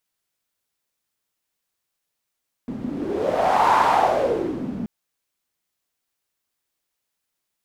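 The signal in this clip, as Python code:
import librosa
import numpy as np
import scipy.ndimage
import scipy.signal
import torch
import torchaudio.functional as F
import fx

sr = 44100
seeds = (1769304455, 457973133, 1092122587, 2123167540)

y = fx.wind(sr, seeds[0], length_s=2.18, low_hz=220.0, high_hz=940.0, q=5.1, gusts=1, swing_db=12.5)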